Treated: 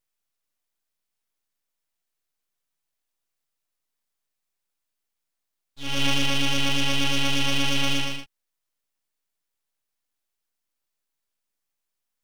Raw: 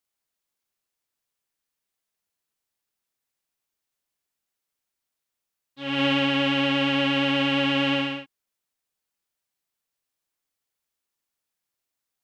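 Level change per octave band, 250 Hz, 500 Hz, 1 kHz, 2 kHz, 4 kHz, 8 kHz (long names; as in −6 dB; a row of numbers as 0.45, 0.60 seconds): −6.0 dB, −7.5 dB, −3.5 dB, −2.0 dB, +1.5 dB, can't be measured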